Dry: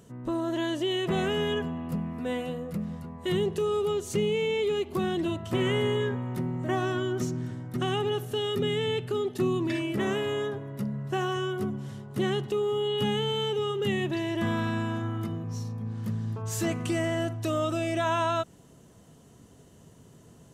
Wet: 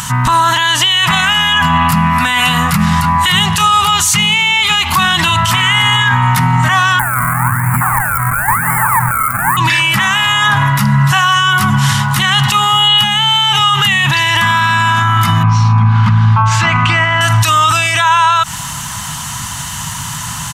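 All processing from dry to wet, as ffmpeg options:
-filter_complex "[0:a]asettb=1/sr,asplit=3[a][b][c];[a]atrim=end=6.994[d];[b]atrim=start=6.99:end=9.57,asetpts=PTS-STARTPTS,afade=t=in:d=0.004:c=qsin,afade=t=out:st=2.576:d=0.004:c=qsin,acrusher=samples=34:mix=1:aa=0.000001:lfo=1:lforange=34:lforate=1,asuperstop=centerf=4200:order=8:qfactor=0.6[e];[c]atrim=start=9.566[f];[d][e]acrossfade=d=0.004:c1=hsin:c2=qsin[g];[g][f]acrossfade=d=0.004:c1=qsin:c2=hsin,asettb=1/sr,asplit=3[h][i][j];[h]atrim=end=15.434[k];[i]atrim=start=15.43:end=17.21,asetpts=PTS-STARTPTS,afade=t=in:d=0.004:c=qsin,afade=t=out:st=1.776:d=0.004:c=qsin,lowpass=2.3k,bandreject=f=1.8k:w=8.2[l];[j]atrim=start=17.206[m];[k][l]acrossfade=d=0.004:c1=hsin:c2=qsin[n];[n][m]acrossfade=d=0.004:c1=qsin:c2=hsin,acompressor=threshold=-29dB:ratio=6,firequalizer=gain_entry='entry(140,0);entry(420,-30);entry(890,12)':delay=0.05:min_phase=1,alimiter=level_in=31dB:limit=-1dB:release=50:level=0:latency=1,volume=-2dB"

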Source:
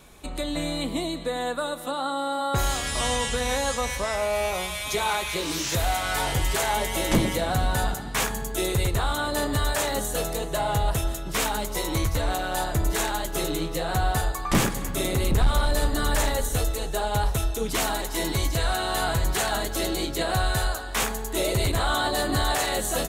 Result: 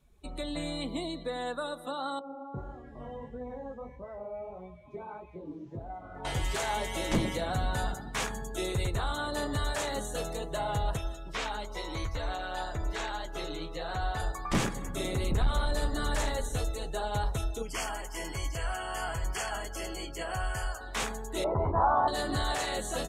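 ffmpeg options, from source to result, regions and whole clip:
-filter_complex "[0:a]asettb=1/sr,asplit=3[a][b][c];[a]atrim=end=2.194[d];[b]atrim=start=2.19:end=6.25,asetpts=PTS-STARTPTS,afade=t=in:d=0.004:c=qsin,afade=t=out:st=4.056:d=0.004:c=qsin,flanger=delay=16:depth=6.8:speed=1.6,bandpass=f=230:t=q:w=0.65[e];[c]atrim=start=6.246[f];[d][e]acrossfade=d=0.004:c1=hsin:c2=qsin[g];[g][f]acrossfade=d=0.004:c1=qsin:c2=hsin,asettb=1/sr,asplit=3[h][i][j];[h]atrim=end=10.974[k];[i]atrim=start=10.97:end=14.2,asetpts=PTS-STARTPTS,afade=t=in:d=0.004:c=qsin,afade=t=out:st=3.226:d=0.004:c=qsin,acrossover=split=5600[l][m];[m]acompressor=threshold=-43dB:ratio=4:attack=1:release=60[n];[l][n]amix=inputs=2:normalize=0,equalizer=f=170:w=0.52:g=-7[o];[j]atrim=start=14.196[p];[k][o]acrossfade=d=0.004:c1=hsin:c2=qsin[q];[q][p]acrossfade=d=0.004:c1=qsin:c2=hsin,asettb=1/sr,asplit=3[r][s][t];[r]atrim=end=17.624[u];[s]atrim=start=17.62:end=20.81,asetpts=PTS-STARTPTS,afade=t=in:d=0.004:c=qsin,afade=t=out:st=3.186:d=0.004:c=qsin,asuperstop=centerf=3800:order=20:qfactor=3.9,equalizer=f=220:w=0.48:g=-8[v];[t]atrim=start=20.806[w];[u][v]acrossfade=d=0.004:c1=hsin:c2=qsin[x];[x][w]acrossfade=d=0.004:c1=qsin:c2=hsin,asettb=1/sr,asplit=3[y][z][aa];[y]atrim=end=21.444[ab];[z]atrim=start=21.44:end=22.08,asetpts=PTS-STARTPTS,afade=t=in:d=0.004:c=qsin,afade=t=out:st=0.636:d=0.004:c=qsin,lowpass=f=950:t=q:w=4.5,asplit=2[ac][ad];[ad]adelay=12,volume=-7.5dB[ae];[ac][ae]amix=inputs=2:normalize=0,atrim=end_sample=28224[af];[aa]atrim=start=22.076[ag];[ab][af]acrossfade=d=0.004:c1=hsin:c2=qsin[ah];[ah][ag]acrossfade=d=0.004:c1=qsin:c2=hsin,afftdn=nr=17:nf=-42,acrossover=split=9300[ai][aj];[aj]acompressor=threshold=-50dB:ratio=4:attack=1:release=60[ak];[ai][ak]amix=inputs=2:normalize=0,volume=-6.5dB"

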